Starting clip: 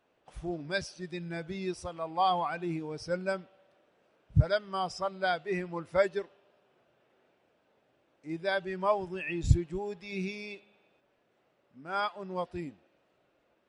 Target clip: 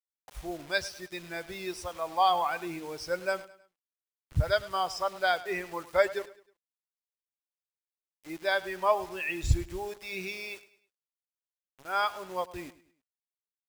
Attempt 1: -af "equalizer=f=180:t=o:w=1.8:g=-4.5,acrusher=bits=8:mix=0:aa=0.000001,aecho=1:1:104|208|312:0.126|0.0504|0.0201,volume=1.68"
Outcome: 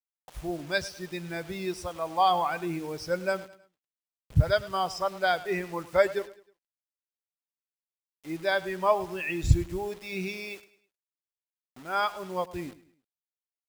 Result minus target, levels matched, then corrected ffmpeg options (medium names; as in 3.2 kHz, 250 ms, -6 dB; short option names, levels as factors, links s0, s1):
250 Hz band +4.0 dB
-af "equalizer=f=180:t=o:w=1.8:g=-14.5,acrusher=bits=8:mix=0:aa=0.000001,aecho=1:1:104|208|312:0.126|0.0504|0.0201,volume=1.68"